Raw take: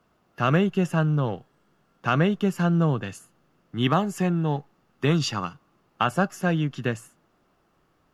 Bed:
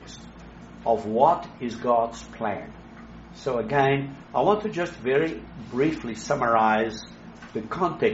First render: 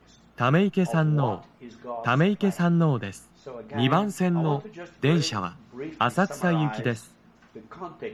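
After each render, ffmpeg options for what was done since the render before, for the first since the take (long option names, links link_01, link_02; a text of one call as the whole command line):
ffmpeg -i in.wav -i bed.wav -filter_complex "[1:a]volume=-13dB[link_01];[0:a][link_01]amix=inputs=2:normalize=0" out.wav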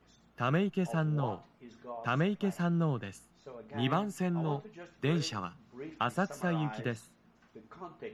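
ffmpeg -i in.wav -af "volume=-8.5dB" out.wav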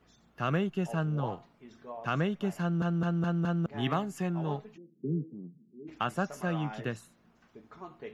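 ffmpeg -i in.wav -filter_complex "[0:a]asplit=3[link_01][link_02][link_03];[link_01]afade=type=out:start_time=4.76:duration=0.02[link_04];[link_02]asuperpass=centerf=240:order=8:qfactor=0.97,afade=type=in:start_time=4.76:duration=0.02,afade=type=out:start_time=5.87:duration=0.02[link_05];[link_03]afade=type=in:start_time=5.87:duration=0.02[link_06];[link_04][link_05][link_06]amix=inputs=3:normalize=0,asplit=6[link_07][link_08][link_09][link_10][link_11][link_12];[link_07]atrim=end=2.822[link_13];[link_08]atrim=start=2.608:end=2.822[link_14];[link_09]atrim=start=2.608:end=2.822[link_15];[link_10]atrim=start=2.608:end=2.822[link_16];[link_11]atrim=start=2.608:end=2.822[link_17];[link_12]atrim=start=3.658[link_18];[link_13][link_14]acrossfade=duration=0.004:curve1=hsin:curve2=hsin[link_19];[link_19][link_15]acrossfade=duration=0.004:curve1=hsin:curve2=hsin[link_20];[link_20][link_16]acrossfade=duration=0.004:curve1=hsin:curve2=hsin[link_21];[link_21][link_17]acrossfade=duration=0.004:curve1=hsin:curve2=hsin[link_22];[link_22][link_18]acrossfade=duration=0.004:curve1=hsin:curve2=hsin" out.wav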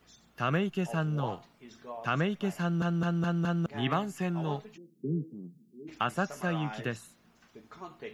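ffmpeg -i in.wav -filter_complex "[0:a]acrossover=split=3100[link_01][link_02];[link_02]acompressor=threshold=-57dB:ratio=4:attack=1:release=60[link_03];[link_01][link_03]amix=inputs=2:normalize=0,highshelf=frequency=2600:gain=10.5" out.wav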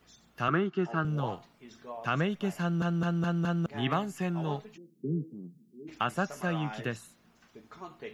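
ffmpeg -i in.wav -filter_complex "[0:a]asettb=1/sr,asplit=3[link_01][link_02][link_03];[link_01]atrim=end=0.484[link_04];[link_02]atrim=start=0.48:end=1.05,asetpts=PTS-STARTPTS,afade=type=in:duration=0.004:curve=qsin,afade=type=out:start_time=0.566:duration=0.004:curve=qsin,highpass=150,equalizer=frequency=350:width_type=q:width=4:gain=9,equalizer=frequency=530:width_type=q:width=4:gain=-9,equalizer=frequency=1300:width_type=q:width=4:gain=10,equalizer=frequency=2600:width_type=q:width=4:gain=-6,equalizer=frequency=3700:width_type=q:width=4:gain=-5,lowpass=frequency=4700:width=0.5412,lowpass=frequency=4700:width=1.3066[link_05];[link_03]atrim=start=1.046[link_06];[link_04][link_05]acrossfade=duration=0.004:curve1=hsin:curve2=qsin[link_07];[link_07][link_06]acrossfade=duration=0.004:curve1=qsin:curve2=hsin" out.wav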